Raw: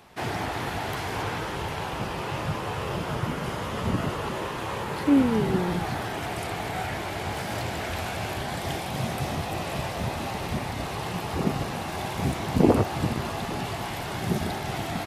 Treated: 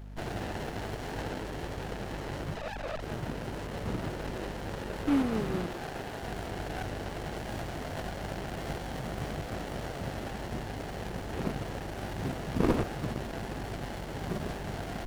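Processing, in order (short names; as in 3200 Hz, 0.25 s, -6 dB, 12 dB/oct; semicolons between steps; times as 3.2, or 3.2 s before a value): 2.55–3.03 sine-wave speech; low shelf 480 Hz -9.5 dB; hum 50 Hz, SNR 11 dB; 5.66–6.23 HPF 360 Hz 24 dB/oct; running maximum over 33 samples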